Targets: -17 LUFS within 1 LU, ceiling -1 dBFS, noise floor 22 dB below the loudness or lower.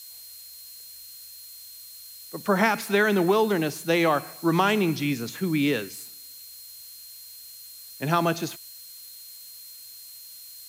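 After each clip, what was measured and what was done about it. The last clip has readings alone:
steady tone 4.2 kHz; tone level -47 dBFS; noise floor -45 dBFS; noise floor target -47 dBFS; loudness -24.5 LUFS; peak level -9.0 dBFS; loudness target -17.0 LUFS
-> band-stop 4.2 kHz, Q 30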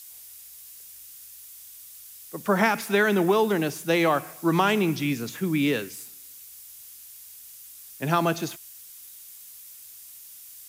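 steady tone not found; noise floor -46 dBFS; noise floor target -47 dBFS
-> noise reduction 6 dB, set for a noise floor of -46 dBFS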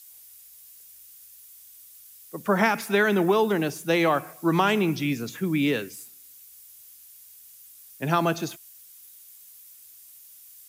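noise floor -50 dBFS; loudness -24.5 LUFS; peak level -9.0 dBFS; loudness target -17.0 LUFS
-> trim +7.5 dB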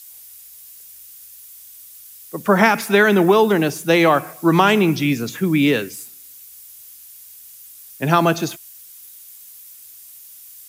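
loudness -17.0 LUFS; peak level -1.5 dBFS; noise floor -42 dBFS

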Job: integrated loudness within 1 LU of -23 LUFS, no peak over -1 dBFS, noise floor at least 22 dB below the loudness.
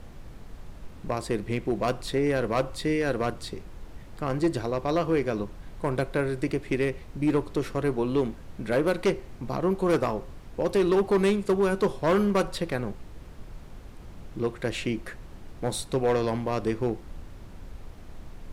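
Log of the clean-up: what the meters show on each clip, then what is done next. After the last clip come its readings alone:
clipped samples 1.2%; clipping level -17.5 dBFS; noise floor -45 dBFS; noise floor target -50 dBFS; loudness -27.5 LUFS; peak level -17.5 dBFS; loudness target -23.0 LUFS
-> clip repair -17.5 dBFS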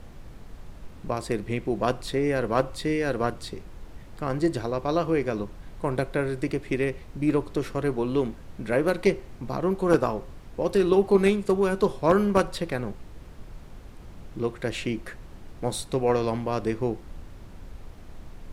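clipped samples 0.0%; noise floor -45 dBFS; noise floor target -49 dBFS
-> noise print and reduce 6 dB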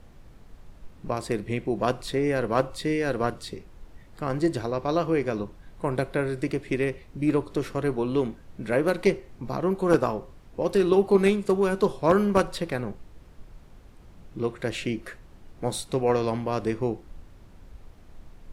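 noise floor -50 dBFS; loudness -26.5 LUFS; peak level -8.5 dBFS; loudness target -23.0 LUFS
-> trim +3.5 dB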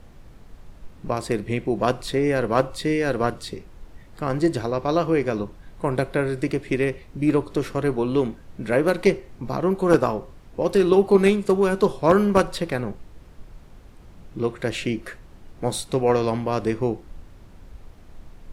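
loudness -23.0 LUFS; peak level -5.0 dBFS; noise floor -47 dBFS

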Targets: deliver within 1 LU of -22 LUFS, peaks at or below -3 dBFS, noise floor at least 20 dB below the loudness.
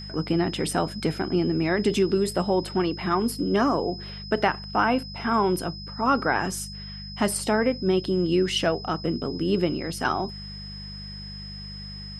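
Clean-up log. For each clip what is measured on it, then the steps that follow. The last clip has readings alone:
hum 50 Hz; highest harmonic 200 Hz; hum level -37 dBFS; steady tone 5.1 kHz; tone level -39 dBFS; loudness -25.0 LUFS; peak level -7.5 dBFS; loudness target -22.0 LUFS
-> de-hum 50 Hz, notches 4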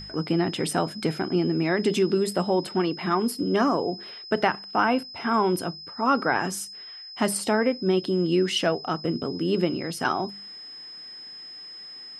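hum not found; steady tone 5.1 kHz; tone level -39 dBFS
-> band-stop 5.1 kHz, Q 30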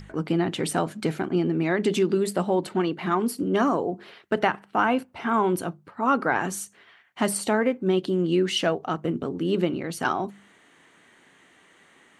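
steady tone not found; loudness -25.5 LUFS; peak level -7.5 dBFS; loudness target -22.0 LUFS
-> trim +3.5 dB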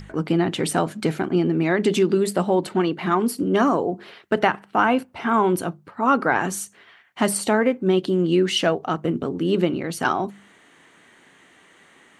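loudness -22.0 LUFS; peak level -3.5 dBFS; noise floor -54 dBFS

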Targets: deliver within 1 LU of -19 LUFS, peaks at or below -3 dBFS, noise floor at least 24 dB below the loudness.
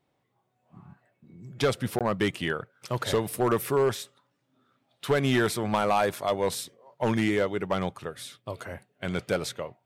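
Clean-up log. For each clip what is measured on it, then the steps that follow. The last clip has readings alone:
clipped samples 0.6%; clipping level -17.0 dBFS; dropouts 1; longest dropout 17 ms; loudness -28.0 LUFS; peak level -17.0 dBFS; loudness target -19.0 LUFS
-> clip repair -17 dBFS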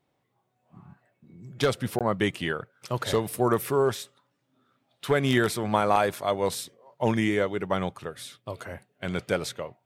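clipped samples 0.0%; dropouts 1; longest dropout 17 ms
-> interpolate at 1.99 s, 17 ms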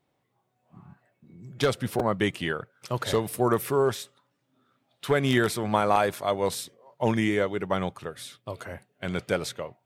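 dropouts 0; loudness -27.0 LUFS; peak level -8.0 dBFS; loudness target -19.0 LUFS
-> trim +8 dB; peak limiter -3 dBFS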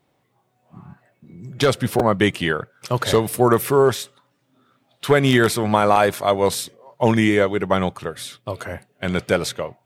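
loudness -19.5 LUFS; peak level -3.0 dBFS; noise floor -67 dBFS

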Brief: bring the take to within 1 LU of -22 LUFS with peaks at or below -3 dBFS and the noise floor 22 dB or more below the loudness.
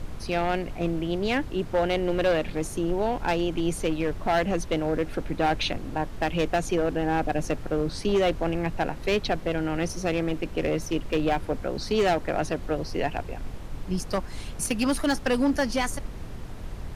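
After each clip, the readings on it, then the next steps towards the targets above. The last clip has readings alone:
clipped samples 1.6%; clipping level -17.5 dBFS; noise floor -37 dBFS; noise floor target -49 dBFS; loudness -27.0 LUFS; peak level -17.5 dBFS; loudness target -22.0 LUFS
-> clip repair -17.5 dBFS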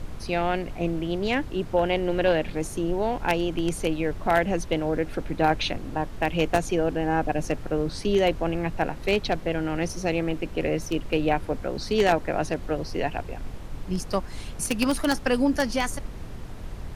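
clipped samples 0.0%; noise floor -37 dBFS; noise floor target -48 dBFS
-> noise print and reduce 11 dB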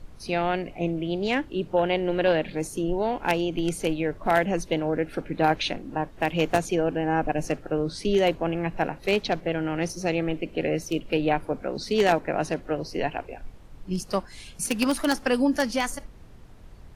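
noise floor -47 dBFS; noise floor target -49 dBFS
-> noise print and reduce 6 dB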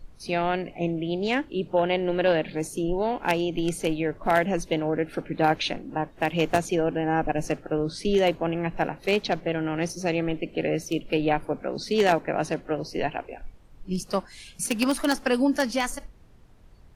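noise floor -51 dBFS; loudness -26.5 LUFS; peak level -8.0 dBFS; loudness target -22.0 LUFS
-> trim +4.5 dB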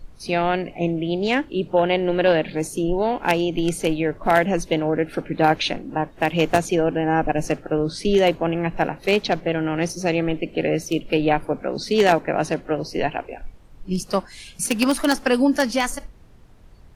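loudness -22.0 LUFS; peak level -3.5 dBFS; noise floor -46 dBFS

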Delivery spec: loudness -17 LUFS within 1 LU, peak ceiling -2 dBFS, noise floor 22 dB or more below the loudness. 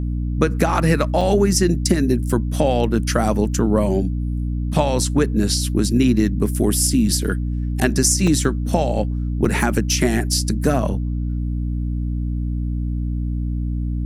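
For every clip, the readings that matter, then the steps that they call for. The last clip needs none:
dropouts 3; longest dropout 3.9 ms; hum 60 Hz; highest harmonic 300 Hz; hum level -20 dBFS; loudness -20.0 LUFS; peak level -2.0 dBFS; loudness target -17.0 LUFS
-> interpolate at 1.21/8.27/9.45 s, 3.9 ms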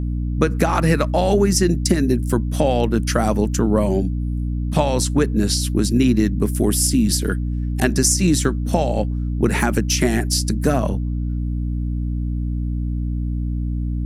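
dropouts 0; hum 60 Hz; highest harmonic 300 Hz; hum level -20 dBFS
-> hum notches 60/120/180/240/300 Hz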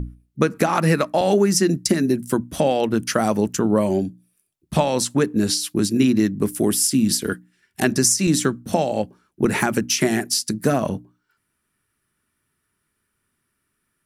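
hum not found; loudness -20.0 LUFS; peak level -3.5 dBFS; loudness target -17.0 LUFS
-> trim +3 dB; peak limiter -2 dBFS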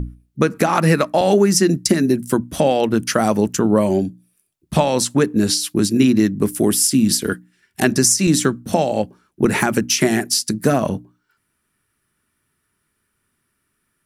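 loudness -17.5 LUFS; peak level -2.0 dBFS; noise floor -71 dBFS

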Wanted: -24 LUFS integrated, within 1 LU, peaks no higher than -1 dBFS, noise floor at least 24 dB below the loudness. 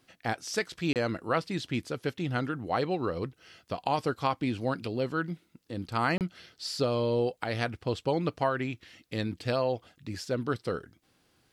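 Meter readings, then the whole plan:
dropouts 2; longest dropout 28 ms; loudness -31.5 LUFS; peak level -13.5 dBFS; loudness target -24.0 LUFS
-> interpolate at 0.93/6.18 s, 28 ms; trim +7.5 dB

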